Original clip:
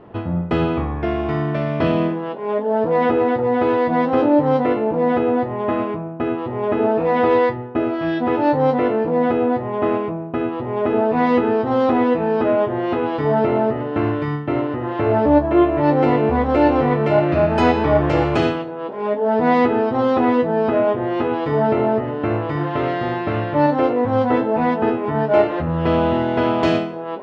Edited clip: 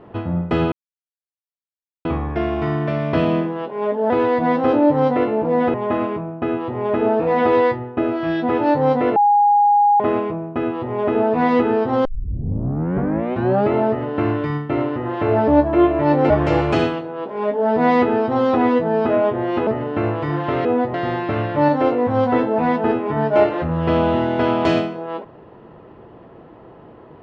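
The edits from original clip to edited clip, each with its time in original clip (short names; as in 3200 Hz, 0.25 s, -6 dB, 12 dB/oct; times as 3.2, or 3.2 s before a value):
0.72 insert silence 1.33 s
2.77–3.59 cut
5.23–5.52 move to 22.92
8.94–9.78 bleep 822 Hz -10.5 dBFS
11.83 tape start 1.69 s
16.08–17.93 cut
21.3–21.94 cut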